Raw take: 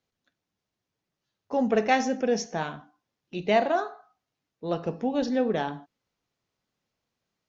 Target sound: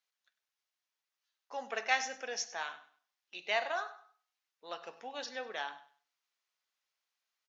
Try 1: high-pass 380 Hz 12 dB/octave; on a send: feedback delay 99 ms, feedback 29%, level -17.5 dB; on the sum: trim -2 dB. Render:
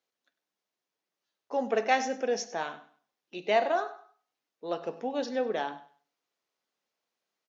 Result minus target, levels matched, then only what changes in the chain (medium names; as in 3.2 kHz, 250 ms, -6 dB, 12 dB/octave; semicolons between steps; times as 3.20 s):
500 Hz band +5.5 dB
change: high-pass 1.2 kHz 12 dB/octave